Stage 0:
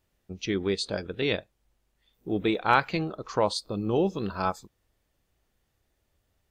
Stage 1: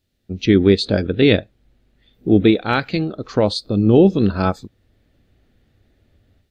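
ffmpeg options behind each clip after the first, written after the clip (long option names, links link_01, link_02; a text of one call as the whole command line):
ffmpeg -i in.wav -filter_complex "[0:a]acrossover=split=2400[link_01][link_02];[link_01]dynaudnorm=framelen=220:gausssize=3:maxgain=15dB[link_03];[link_03][link_02]amix=inputs=2:normalize=0,equalizer=frequency=100:width_type=o:width=0.67:gain=6,equalizer=frequency=250:width_type=o:width=0.67:gain=7,equalizer=frequency=1000:width_type=o:width=0.67:gain=-11,equalizer=frequency=4000:width_type=o:width=0.67:gain=9,volume=-1dB" out.wav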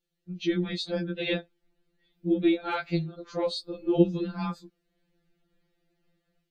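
ffmpeg -i in.wav -af "afftfilt=real='re*2.83*eq(mod(b,8),0)':imag='im*2.83*eq(mod(b,8),0)':win_size=2048:overlap=0.75,volume=-8.5dB" out.wav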